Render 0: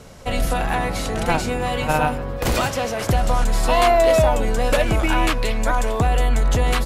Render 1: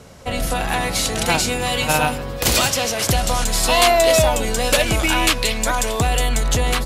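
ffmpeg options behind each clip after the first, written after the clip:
-filter_complex "[0:a]highpass=42,acrossover=split=2800[a][b];[b]dynaudnorm=f=260:g=5:m=12dB[c];[a][c]amix=inputs=2:normalize=0"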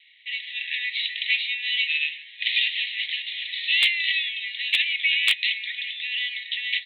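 -af "asuperpass=centerf=2700:order=20:qfactor=1.3,aeval=exprs='0.299*(abs(mod(val(0)/0.299+3,4)-2)-1)':c=same,volume=1dB"

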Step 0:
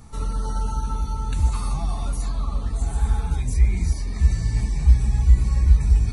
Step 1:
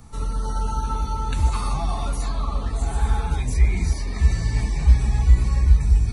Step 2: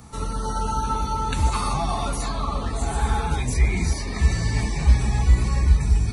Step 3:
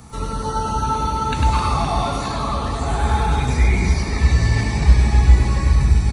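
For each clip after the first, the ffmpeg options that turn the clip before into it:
-filter_complex "[0:a]bandreject=f=200.4:t=h:w=4,bandreject=f=400.8:t=h:w=4,bandreject=f=601.2:t=h:w=4,bandreject=f=801.6:t=h:w=4,bandreject=f=1.002k:t=h:w=4,bandreject=f=1.2024k:t=h:w=4,bandreject=f=1.4028k:t=h:w=4,bandreject=f=1.6032k:t=h:w=4,bandreject=f=1.8036k:t=h:w=4,bandreject=f=2.004k:t=h:w=4,bandreject=f=2.2044k:t=h:w=4,bandreject=f=2.4048k:t=h:w=4,acrossover=split=300|4800[a][b][c];[b]dynaudnorm=f=150:g=9:m=6dB[d];[a][d][c]amix=inputs=3:normalize=0"
-af "highpass=f=110:p=1,volume=4.5dB"
-filter_complex "[0:a]acrossover=split=5600[a][b];[b]acompressor=threshold=-48dB:ratio=4:attack=1:release=60[c];[a][c]amix=inputs=2:normalize=0,aecho=1:1:100|260|516|925.6|1581:0.631|0.398|0.251|0.158|0.1,volume=3dB"

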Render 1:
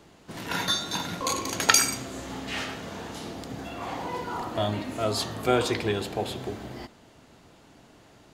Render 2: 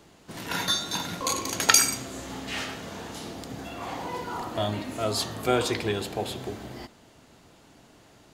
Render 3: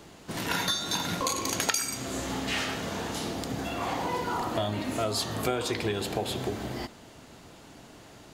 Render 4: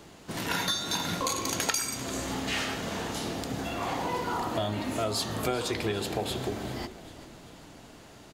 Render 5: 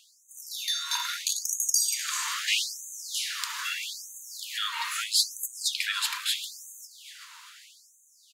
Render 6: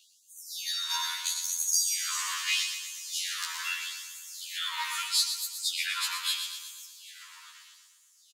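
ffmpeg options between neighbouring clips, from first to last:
-af "highshelf=f=5.1k:g=4.5,volume=-1dB"
-af "acompressor=threshold=-31dB:ratio=5,volume=5dB"
-filter_complex "[0:a]asplit=2[a][b];[b]volume=22dB,asoftclip=hard,volume=-22dB,volume=-8dB[c];[a][c]amix=inputs=2:normalize=0,asplit=6[d][e][f][g][h][i];[e]adelay=393,afreqshift=-35,volume=-15.5dB[j];[f]adelay=786,afreqshift=-70,volume=-21.3dB[k];[g]adelay=1179,afreqshift=-105,volume=-27.2dB[l];[h]adelay=1572,afreqshift=-140,volume=-33dB[m];[i]adelay=1965,afreqshift=-175,volume=-38.9dB[n];[d][j][k][l][m][n]amix=inputs=6:normalize=0,volume=-3.5dB"
-af "dynaudnorm=f=410:g=7:m=9dB,afftfilt=real='re*gte(b*sr/1024,880*pow(6200/880,0.5+0.5*sin(2*PI*0.78*pts/sr)))':imag='im*gte(b*sr/1024,880*pow(6200/880,0.5+0.5*sin(2*PI*0.78*pts/sr)))':win_size=1024:overlap=0.75"
-filter_complex "[0:a]asplit=2[a][b];[b]aecho=0:1:120|240|360|480|600|720|840:0.398|0.219|0.12|0.0662|0.0364|0.02|0.011[c];[a][c]amix=inputs=2:normalize=0,afftfilt=real='re*2*eq(mod(b,4),0)':imag='im*2*eq(mod(b,4),0)':win_size=2048:overlap=0.75"

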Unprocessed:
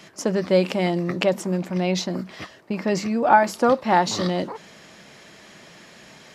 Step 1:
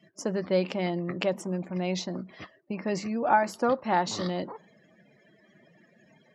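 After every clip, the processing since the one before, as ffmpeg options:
-af "afftdn=nr=26:nf=-43,volume=-7dB"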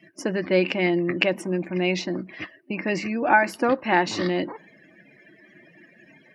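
-af "superequalizer=6b=2.51:11b=2.51:12b=3.16:15b=0.631:16b=1.58,volume=3dB"

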